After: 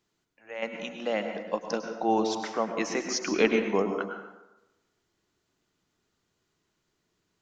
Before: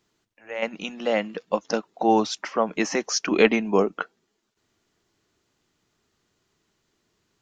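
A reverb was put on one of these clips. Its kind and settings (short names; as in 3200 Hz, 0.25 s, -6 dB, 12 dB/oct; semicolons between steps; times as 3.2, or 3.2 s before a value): plate-style reverb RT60 1 s, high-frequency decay 0.6×, pre-delay 90 ms, DRR 5 dB; gain -6 dB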